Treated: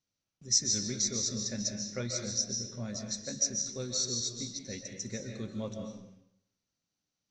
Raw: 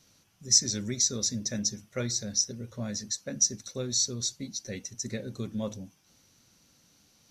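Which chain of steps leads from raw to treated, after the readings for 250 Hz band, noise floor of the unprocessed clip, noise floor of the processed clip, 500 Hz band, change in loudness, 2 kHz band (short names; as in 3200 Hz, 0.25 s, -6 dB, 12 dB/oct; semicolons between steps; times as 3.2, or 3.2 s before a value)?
-3.0 dB, -65 dBFS, under -85 dBFS, -2.5 dB, -3.5 dB, -3.0 dB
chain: LPF 7200 Hz 24 dB/oct; gate -58 dBFS, range -20 dB; digital reverb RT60 0.77 s, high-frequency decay 0.85×, pre-delay 0.105 s, DRR 2.5 dB; gain -4.5 dB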